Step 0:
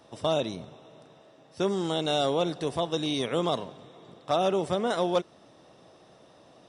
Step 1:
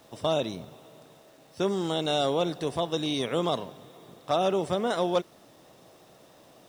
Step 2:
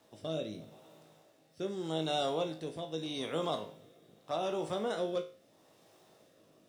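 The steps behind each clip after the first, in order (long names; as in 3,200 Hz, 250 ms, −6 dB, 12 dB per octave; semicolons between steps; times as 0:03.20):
bit-depth reduction 10 bits, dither none
low-shelf EQ 73 Hz −9 dB; rotating-speaker cabinet horn 0.8 Hz; tuned comb filter 53 Hz, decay 0.36 s, harmonics all, mix 80%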